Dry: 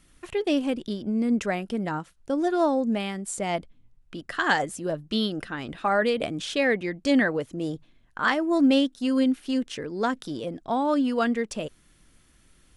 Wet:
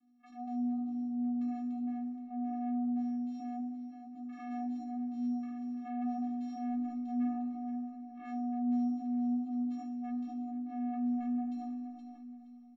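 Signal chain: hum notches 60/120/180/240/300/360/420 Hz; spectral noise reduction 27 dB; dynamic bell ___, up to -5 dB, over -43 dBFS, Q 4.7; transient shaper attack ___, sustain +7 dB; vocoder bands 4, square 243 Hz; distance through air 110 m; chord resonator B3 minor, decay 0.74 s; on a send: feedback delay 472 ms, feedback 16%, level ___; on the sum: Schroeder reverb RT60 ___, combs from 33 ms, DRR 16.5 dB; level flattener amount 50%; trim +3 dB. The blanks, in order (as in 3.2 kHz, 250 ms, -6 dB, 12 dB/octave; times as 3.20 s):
1.5 kHz, -9 dB, -18.5 dB, 2.4 s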